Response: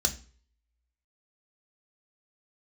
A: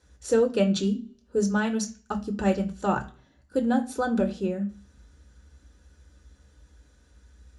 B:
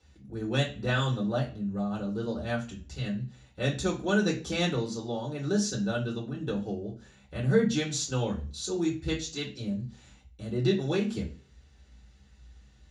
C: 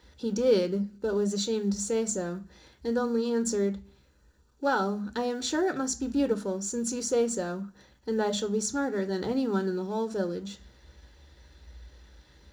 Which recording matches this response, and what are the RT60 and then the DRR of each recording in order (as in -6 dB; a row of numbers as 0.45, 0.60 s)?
A; 0.45, 0.45, 0.45 s; 4.0, -3.5, 8.5 dB